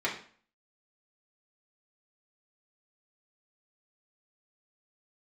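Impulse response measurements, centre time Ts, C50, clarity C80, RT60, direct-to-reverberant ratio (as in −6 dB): 24 ms, 8.0 dB, 12.0 dB, 0.45 s, −5.5 dB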